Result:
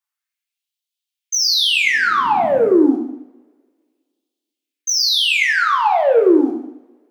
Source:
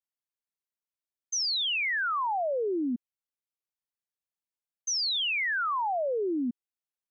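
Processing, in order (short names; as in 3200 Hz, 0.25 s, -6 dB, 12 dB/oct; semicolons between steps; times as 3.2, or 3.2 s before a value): 5.07–6.19 low shelf 450 Hz +6 dB; sample leveller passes 1; 1.82–2.73 band noise 65–260 Hz -40 dBFS; LFO high-pass sine 0.29 Hz 270–3400 Hz; two-slope reverb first 0.74 s, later 1.9 s, from -27 dB, DRR 0 dB; gain +7 dB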